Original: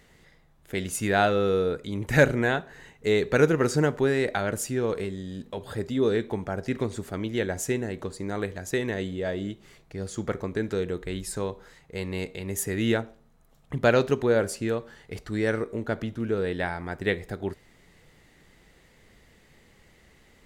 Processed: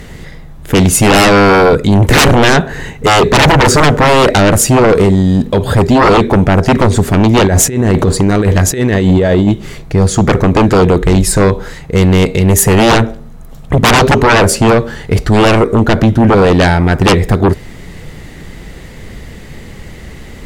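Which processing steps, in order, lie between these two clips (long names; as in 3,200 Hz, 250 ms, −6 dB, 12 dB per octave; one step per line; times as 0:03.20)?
low-shelf EQ 300 Hz +9 dB
0:07.46–0:09.48: compressor whose output falls as the input rises −28 dBFS, ratio −0.5
sine wavefolder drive 19 dB, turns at −2.5 dBFS
level −1 dB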